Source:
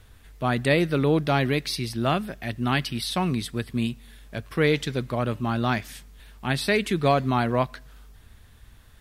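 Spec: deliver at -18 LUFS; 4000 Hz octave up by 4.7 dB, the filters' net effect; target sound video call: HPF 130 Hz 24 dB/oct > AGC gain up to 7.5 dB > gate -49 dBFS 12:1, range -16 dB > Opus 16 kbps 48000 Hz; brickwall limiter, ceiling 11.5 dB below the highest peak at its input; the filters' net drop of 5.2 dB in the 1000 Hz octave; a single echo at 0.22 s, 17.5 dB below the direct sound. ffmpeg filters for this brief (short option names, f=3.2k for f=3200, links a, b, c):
-af "equalizer=f=1k:t=o:g=-8,equalizer=f=4k:t=o:g=6,alimiter=limit=-17.5dB:level=0:latency=1,highpass=f=130:w=0.5412,highpass=f=130:w=1.3066,aecho=1:1:220:0.133,dynaudnorm=m=7.5dB,agate=range=-16dB:threshold=-49dB:ratio=12,volume=12dB" -ar 48000 -c:a libopus -b:a 16k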